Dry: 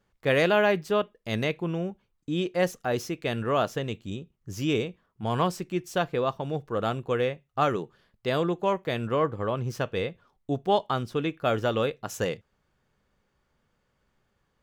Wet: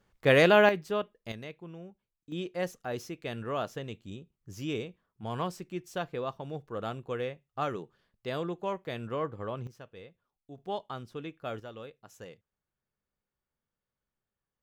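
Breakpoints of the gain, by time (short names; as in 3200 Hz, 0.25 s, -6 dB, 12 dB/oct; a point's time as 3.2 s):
+1.5 dB
from 0.69 s -6 dB
from 1.32 s -15.5 dB
from 2.32 s -8 dB
from 9.67 s -19.5 dB
from 10.58 s -12 dB
from 11.6 s -18.5 dB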